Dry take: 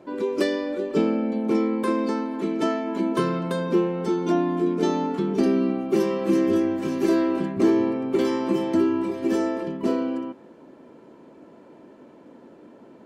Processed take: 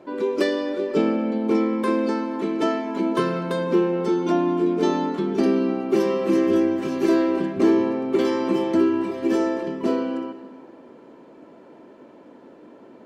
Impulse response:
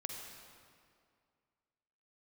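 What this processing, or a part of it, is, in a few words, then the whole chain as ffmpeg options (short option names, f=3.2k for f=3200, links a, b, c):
filtered reverb send: -filter_complex "[0:a]asplit=2[a][b];[b]highpass=210,lowpass=6.7k[c];[1:a]atrim=start_sample=2205[d];[c][d]afir=irnorm=-1:irlink=0,volume=-2.5dB[e];[a][e]amix=inputs=2:normalize=0,volume=-1.5dB"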